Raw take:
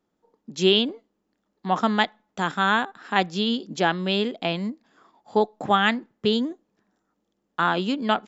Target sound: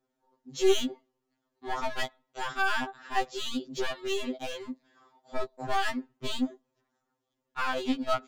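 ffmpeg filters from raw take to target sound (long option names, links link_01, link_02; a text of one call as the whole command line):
ffmpeg -i in.wav -af "aeval=exprs='clip(val(0),-1,0.0596)':channel_layout=same,acontrast=75,afftfilt=real='re*2.45*eq(mod(b,6),0)':imag='im*2.45*eq(mod(b,6),0)':win_size=2048:overlap=0.75,volume=-8.5dB" out.wav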